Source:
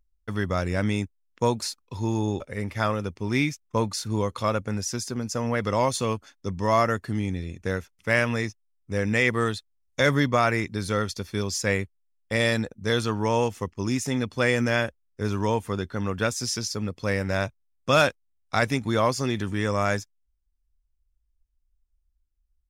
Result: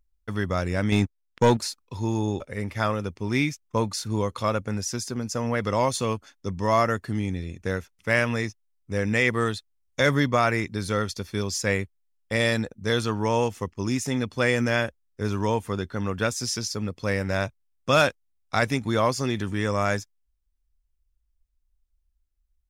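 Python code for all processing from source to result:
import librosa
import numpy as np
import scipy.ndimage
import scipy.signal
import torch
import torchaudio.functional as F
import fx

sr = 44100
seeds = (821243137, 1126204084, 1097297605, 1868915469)

y = fx.chain(x, sr, fx.lowpass(hz=7600.0, slope=12),
    fx.leveller(passes=2), at=(0.92, 1.57))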